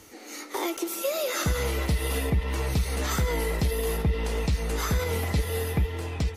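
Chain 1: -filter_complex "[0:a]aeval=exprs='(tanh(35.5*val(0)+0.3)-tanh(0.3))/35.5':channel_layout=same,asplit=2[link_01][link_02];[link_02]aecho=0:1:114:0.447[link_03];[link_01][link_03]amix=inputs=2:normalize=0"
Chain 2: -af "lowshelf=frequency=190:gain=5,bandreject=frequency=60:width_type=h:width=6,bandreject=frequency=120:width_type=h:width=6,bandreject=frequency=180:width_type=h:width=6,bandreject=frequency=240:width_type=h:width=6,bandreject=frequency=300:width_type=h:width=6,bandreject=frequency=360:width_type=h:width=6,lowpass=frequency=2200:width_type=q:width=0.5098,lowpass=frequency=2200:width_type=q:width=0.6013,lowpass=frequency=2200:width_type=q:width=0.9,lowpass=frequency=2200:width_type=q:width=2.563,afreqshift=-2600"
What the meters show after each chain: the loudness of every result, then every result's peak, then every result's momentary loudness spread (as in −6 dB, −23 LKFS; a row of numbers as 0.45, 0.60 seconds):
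−34.5, −21.5 LKFS; −25.5, −12.0 dBFS; 3, 7 LU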